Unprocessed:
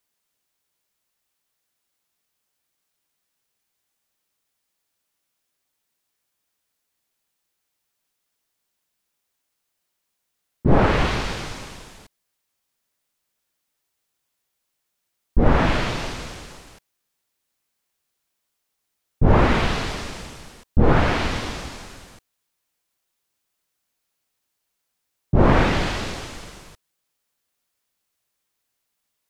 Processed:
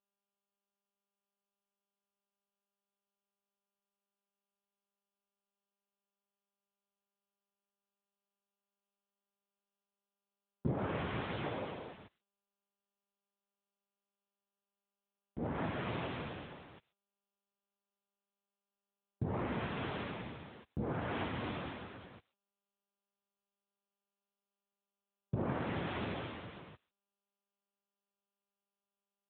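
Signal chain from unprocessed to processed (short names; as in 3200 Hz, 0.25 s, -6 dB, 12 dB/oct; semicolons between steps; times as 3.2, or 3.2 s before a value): 11.44–11.93 bell 540 Hz +9 dB 1.3 oct; compressor 12:1, threshold -25 dBFS, peak gain reduction 16.5 dB; gate with hold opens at -40 dBFS; high shelf 2300 Hz -4 dB; gain -4.5 dB; AMR-NB 10.2 kbps 8000 Hz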